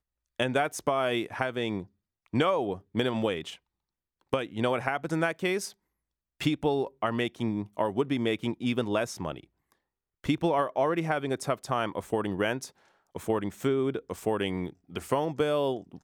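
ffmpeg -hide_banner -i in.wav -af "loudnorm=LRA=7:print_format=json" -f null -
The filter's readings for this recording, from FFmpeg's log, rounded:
"input_i" : "-29.8",
"input_tp" : "-9.8",
"input_lra" : "1.1",
"input_thresh" : "-40.2",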